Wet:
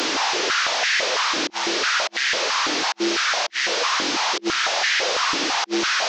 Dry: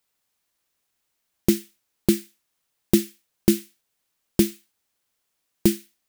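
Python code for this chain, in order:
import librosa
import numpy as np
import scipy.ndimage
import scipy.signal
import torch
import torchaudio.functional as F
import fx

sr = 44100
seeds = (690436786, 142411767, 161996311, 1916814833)

y = fx.delta_mod(x, sr, bps=32000, step_db=-24.0)
y = fx.over_compress(y, sr, threshold_db=-30.0, ratio=-0.5)
y = fx.filter_held_highpass(y, sr, hz=6.0, low_hz=300.0, high_hz=1800.0)
y = y * 10.0 ** (4.5 / 20.0)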